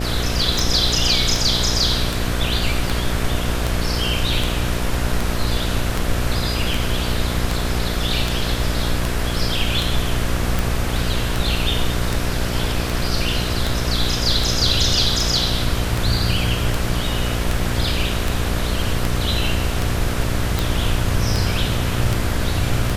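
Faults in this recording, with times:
buzz 60 Hz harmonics 12 -24 dBFS
tick 78 rpm

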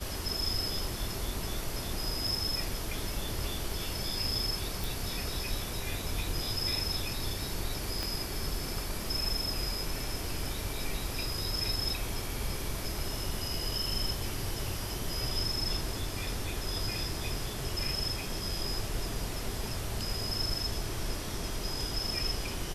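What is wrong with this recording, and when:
4.84 s: pop
8.03 s: pop -18 dBFS

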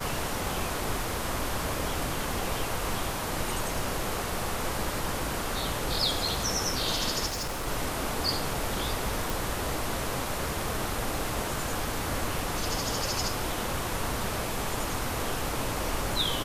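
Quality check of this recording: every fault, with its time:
7.26–7.68 s: clipped -29.5 dBFS
9.30 s: pop

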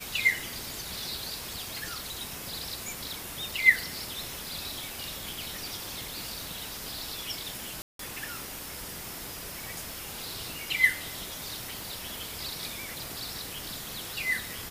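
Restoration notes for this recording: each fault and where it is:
7.82–7.99 s: dropout 173 ms

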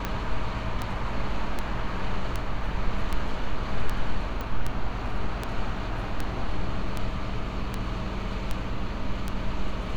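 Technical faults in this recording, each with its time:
tick 78 rpm -14 dBFS
4.41 s: pop -20 dBFS

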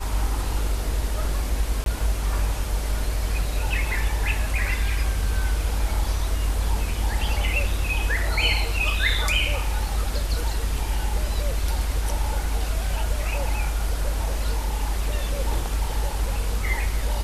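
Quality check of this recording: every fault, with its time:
1.84–1.86 s: dropout 22 ms

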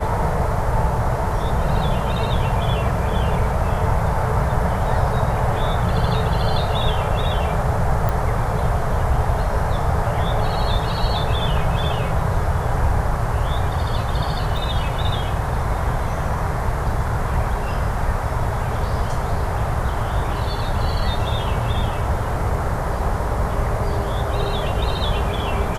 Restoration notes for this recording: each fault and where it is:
8.09 s: pop
14.57 s: dropout 2.5 ms

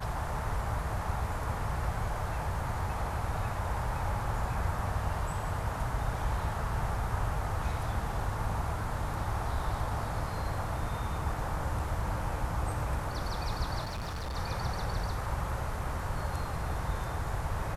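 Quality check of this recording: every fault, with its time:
13.84–14.37 s: clipped -33.5 dBFS

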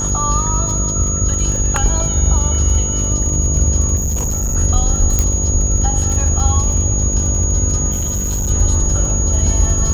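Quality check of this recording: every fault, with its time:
buzz 50 Hz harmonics 11 -21 dBFS
crackle 37 per s -23 dBFS
whine 6.7 kHz -19 dBFS
3.96–4.56 s: clipped -15 dBFS
5.19 s: pop -2 dBFS
7.91–8.51 s: clipped -15.5 dBFS

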